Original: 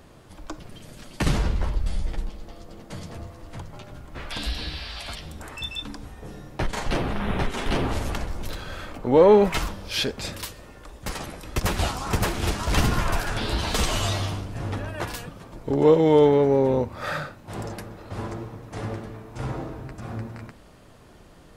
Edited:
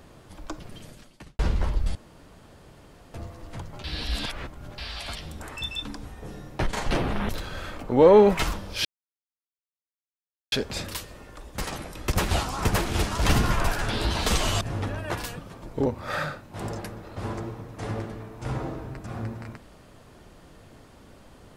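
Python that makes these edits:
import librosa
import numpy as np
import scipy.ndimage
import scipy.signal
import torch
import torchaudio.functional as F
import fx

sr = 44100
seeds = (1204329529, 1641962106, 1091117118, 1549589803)

y = fx.edit(x, sr, fx.fade_out_span(start_s=0.84, length_s=0.55, curve='qua'),
    fx.room_tone_fill(start_s=1.95, length_s=1.19),
    fx.reverse_span(start_s=3.84, length_s=0.94),
    fx.cut(start_s=7.29, length_s=1.15),
    fx.insert_silence(at_s=10.0, length_s=1.67),
    fx.cut(start_s=14.09, length_s=0.42),
    fx.cut(start_s=15.76, length_s=1.04), tone=tone)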